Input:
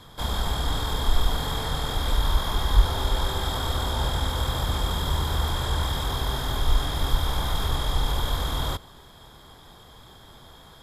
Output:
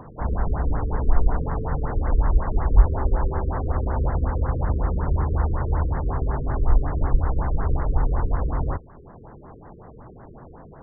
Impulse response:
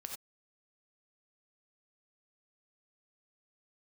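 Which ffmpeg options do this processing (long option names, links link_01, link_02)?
-filter_complex "[0:a]highshelf=frequency=2200:gain=-10,acrossover=split=110|1100|4800[link_01][link_02][link_03][link_04];[link_02]acompressor=mode=upward:threshold=-41dB:ratio=2.5[link_05];[link_01][link_05][link_03][link_04]amix=inputs=4:normalize=0,afftfilt=real='re*lt(b*sr/1024,490*pow(2200/490,0.5+0.5*sin(2*PI*5.4*pts/sr)))':imag='im*lt(b*sr/1024,490*pow(2200/490,0.5+0.5*sin(2*PI*5.4*pts/sr)))':win_size=1024:overlap=0.75,volume=4dB"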